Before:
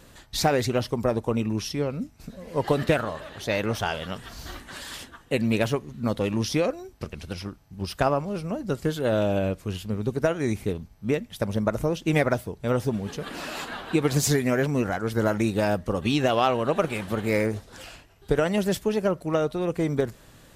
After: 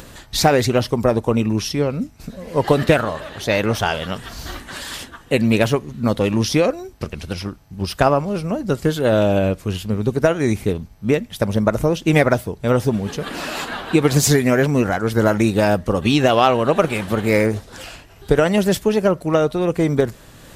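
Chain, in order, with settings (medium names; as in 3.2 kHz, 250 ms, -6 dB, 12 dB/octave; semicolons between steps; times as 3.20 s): upward compressor, threshold -42 dBFS; trim +7.5 dB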